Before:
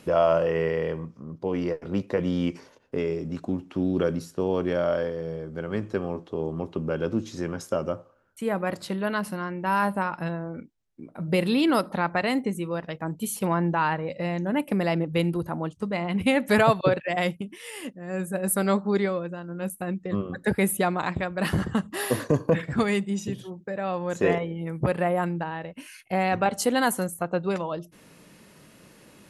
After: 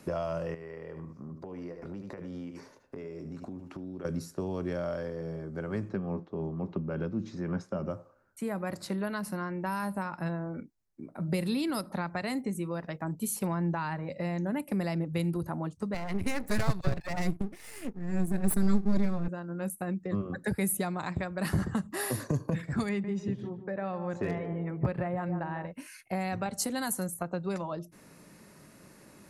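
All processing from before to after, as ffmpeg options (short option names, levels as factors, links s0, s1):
-filter_complex "[0:a]asettb=1/sr,asplit=3[s0][s1][s2];[s0]atrim=end=0.544[s3];[s1]atrim=start=0.54:end=4.05,asetpts=PTS-STARTPTS,afade=t=in:d=0.004:c=qsin,afade=t=out:st=3.506:d=0.004:c=qsin,aecho=1:1:76:0.282,atrim=end_sample=154791,acompressor=threshold=0.0178:ratio=8:attack=3.2:release=140:knee=1:detection=peak[s4];[s2]atrim=start=4.046[s5];[s3][s4]acrossfade=d=0.004:c1=hsin:c2=qsin[s6];[s6][s5]acrossfade=d=0.004:c1=qsin:c2=hsin,asettb=1/sr,asplit=3[s7][s8][s9];[s7]atrim=end=5.894[s10];[s8]atrim=start=5.89:end=7.9,asetpts=PTS-STARTPTS,afade=t=in:d=0.004:c=qsin,afade=t=out:st=2.006:d=0.004:c=qsin,lowpass=3700,equalizer=f=190:t=o:w=0.25:g=12,tremolo=f=3.6:d=0.45[s11];[s9]atrim=start=7.896[s12];[s10][s11]acrossfade=d=0.004:c1=hsin:c2=qsin[s13];[s13][s12]acrossfade=d=0.004:c1=qsin:c2=hsin,asettb=1/sr,asplit=3[s14][s15][s16];[s14]atrim=end=15.944[s17];[s15]atrim=start=15.94:end=19.28,asetpts=PTS-STARTPTS,afade=t=in:d=0.004:c=qsin,afade=t=out:st=3.336:d=0.004:c=qsin,asubboost=boost=11:cutoff=200,aeval=exprs='max(val(0),0)':c=same[s18];[s16]atrim=start=19.276[s19];[s17][s18]acrossfade=d=0.004:c1=hsin:c2=qsin[s20];[s20][s19]acrossfade=d=0.004:c1=qsin:c2=hsin,asettb=1/sr,asplit=3[s21][s22][s23];[s21]atrim=end=22.894[s24];[s22]atrim=start=22.89:end=25.67,asetpts=PTS-STARTPTS,afade=t=in:d=0.004:c=qsin,afade=t=out:st=2.776:d=0.004:c=qsin,lowpass=3000,asoftclip=type=hard:threshold=0.237,asplit=2[s25][s26];[s26]adelay=148,lowpass=f=1100:p=1,volume=0.335,asplit=2[s27][s28];[s28]adelay=148,lowpass=f=1100:p=1,volume=0.36,asplit=2[s29][s30];[s30]adelay=148,lowpass=f=1100:p=1,volume=0.36,asplit=2[s31][s32];[s32]adelay=148,lowpass=f=1100:p=1,volume=0.36[s33];[s25][s27][s29][s31][s33]amix=inputs=5:normalize=0,atrim=end_sample=122598[s34];[s23]atrim=start=25.666[s35];[s24][s34]acrossfade=d=0.004:c1=hsin:c2=qsin[s36];[s36][s35]acrossfade=d=0.004:c1=qsin:c2=hsin,equalizer=f=3100:t=o:w=0.52:g=-9.5,acrossover=split=180|3000[s37][s38][s39];[s38]acompressor=threshold=0.0316:ratio=6[s40];[s37][s40][s39]amix=inputs=3:normalize=0,bandreject=f=480:w=13,volume=0.841"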